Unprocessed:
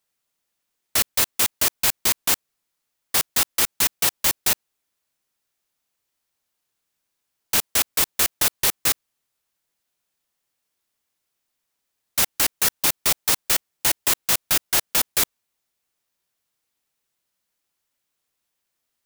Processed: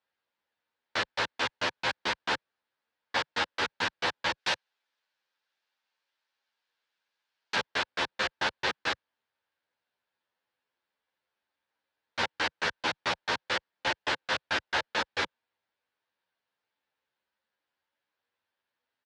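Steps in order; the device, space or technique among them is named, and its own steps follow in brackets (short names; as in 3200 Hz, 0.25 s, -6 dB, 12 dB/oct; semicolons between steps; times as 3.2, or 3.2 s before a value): 4.38–7.55 tilt +3 dB/oct; barber-pole flanger into a guitar amplifier (endless flanger 10.7 ms +0.34 Hz; soft clip -10 dBFS, distortion -14 dB; speaker cabinet 81–4200 Hz, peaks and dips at 150 Hz -7 dB, 520 Hz +6 dB, 900 Hz +7 dB, 1600 Hz +8 dB); gain -1.5 dB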